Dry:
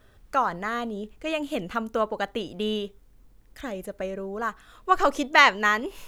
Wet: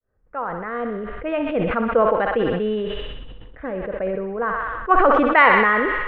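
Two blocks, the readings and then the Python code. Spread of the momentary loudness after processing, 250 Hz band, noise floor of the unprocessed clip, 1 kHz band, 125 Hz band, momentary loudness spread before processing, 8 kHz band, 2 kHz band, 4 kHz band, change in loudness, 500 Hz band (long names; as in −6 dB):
16 LU, +7.0 dB, −56 dBFS, +5.5 dB, +9.0 dB, 17 LU, below −25 dB, +4.5 dB, −4.5 dB, +5.5 dB, +9.0 dB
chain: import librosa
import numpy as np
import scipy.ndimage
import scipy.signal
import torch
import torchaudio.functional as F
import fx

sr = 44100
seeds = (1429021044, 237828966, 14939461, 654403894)

p1 = fx.fade_in_head(x, sr, length_s=1.1)
p2 = scipy.signal.sosfilt(scipy.signal.butter(4, 2200.0, 'lowpass', fs=sr, output='sos'), p1)
p3 = fx.peak_eq(p2, sr, hz=490.0, db=9.0, octaves=0.27)
p4 = fx.env_lowpass(p3, sr, base_hz=1700.0, full_db=-20.0)
p5 = p4 + fx.echo_thinned(p4, sr, ms=63, feedback_pct=78, hz=610.0, wet_db=-9.5, dry=0)
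p6 = fx.sustainer(p5, sr, db_per_s=24.0)
y = p6 * 10.0 ** (3.0 / 20.0)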